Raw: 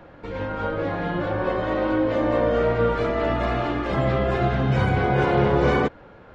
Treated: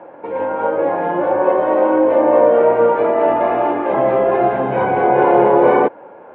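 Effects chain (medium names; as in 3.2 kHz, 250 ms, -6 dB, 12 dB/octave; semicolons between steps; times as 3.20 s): cabinet simulation 350–2100 Hz, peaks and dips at 360 Hz +3 dB, 560 Hz +4 dB, 890 Hz +7 dB, 1.3 kHz -8 dB, 1.9 kHz -7 dB; trim +8 dB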